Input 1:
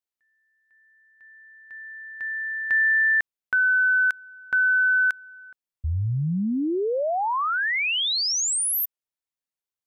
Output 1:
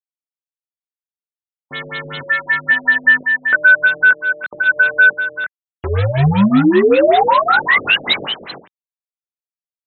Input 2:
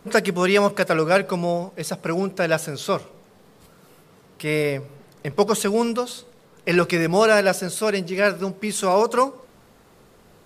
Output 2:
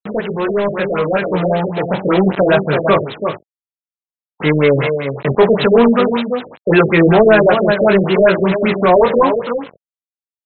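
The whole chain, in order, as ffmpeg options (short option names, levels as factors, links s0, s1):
-filter_complex "[0:a]aeval=exprs='val(0)+0.5*0.0355*sgn(val(0))':c=same,aresample=11025,acrusher=bits=4:mix=0:aa=0.000001,aresample=44100,aecho=1:1:334:0.376,flanger=delay=18.5:depth=3.6:speed=0.28,asplit=2[s0][s1];[s1]alimiter=limit=0.211:level=0:latency=1:release=269,volume=0.708[s2];[s0][s2]amix=inputs=2:normalize=0,highpass=140,asoftclip=type=tanh:threshold=0.237,dynaudnorm=f=290:g=11:m=2.66,afftfilt=real='re*lt(b*sr/1024,630*pow(4200/630,0.5+0.5*sin(2*PI*5.2*pts/sr)))':imag='im*lt(b*sr/1024,630*pow(4200/630,0.5+0.5*sin(2*PI*5.2*pts/sr)))':win_size=1024:overlap=0.75,volume=1.26"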